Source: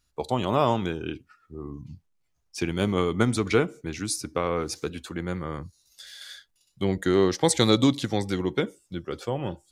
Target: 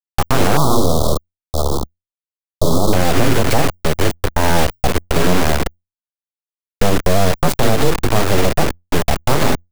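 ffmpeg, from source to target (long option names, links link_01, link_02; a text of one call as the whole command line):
ffmpeg -i in.wav -filter_complex "[0:a]highpass=130,bandreject=frequency=50:width_type=h:width=6,bandreject=frequency=100:width_type=h:width=6,bandreject=frequency=150:width_type=h:width=6,bandreject=frequency=200:width_type=h:width=6,bandreject=frequency=250:width_type=h:width=6,bandreject=frequency=300:width_type=h:width=6,bandreject=frequency=350:width_type=h:width=6,afwtdn=0.0224,tiltshelf=frequency=1300:gain=9.5,acompressor=threshold=-17dB:ratio=4,acrusher=bits=4:mix=0:aa=0.000001,afreqshift=-45,aeval=exprs='abs(val(0))':channel_layout=same,asettb=1/sr,asplit=3[link_01][link_02][link_03];[link_01]atrim=end=0.574[link_04];[link_02]atrim=start=0.57:end=2.93,asetpts=PTS-STARTPTS,afade=type=in:duration=0.004:curve=qsin,afade=type=out:start_time=2.356:duration=0.004:curve=qsin,asuperstop=centerf=2100:order=12:qfactor=0.95[link_05];[link_03]atrim=start=2.926[link_06];[link_04][link_05]acrossfade=duration=0.004:curve1=hsin:curve2=qsin[link_07];[link_07][link_06]acrossfade=duration=0.004:curve1=qsin:curve2=hsin,alimiter=level_in=16.5dB:limit=-1dB:release=50:level=0:latency=1,volume=-1dB" out.wav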